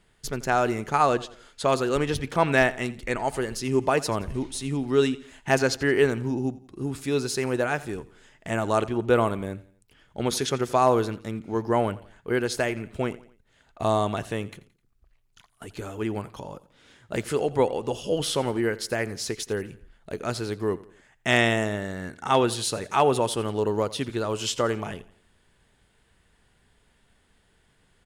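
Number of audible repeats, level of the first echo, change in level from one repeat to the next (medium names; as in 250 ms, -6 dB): 3, -19.0 dB, -7.5 dB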